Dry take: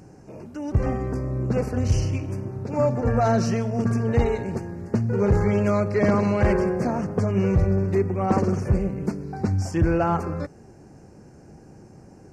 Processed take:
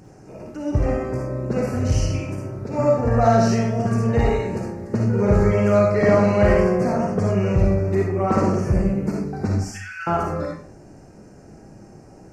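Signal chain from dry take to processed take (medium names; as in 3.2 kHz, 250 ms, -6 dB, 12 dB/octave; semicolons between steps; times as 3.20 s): 9.64–10.07 s: Chebyshev high-pass 1.4 kHz, order 5; reverberation RT60 0.45 s, pre-delay 15 ms, DRR -2 dB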